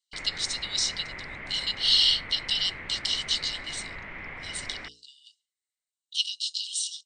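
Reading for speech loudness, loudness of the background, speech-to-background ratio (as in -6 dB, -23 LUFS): -26.5 LUFS, -39.0 LUFS, 12.5 dB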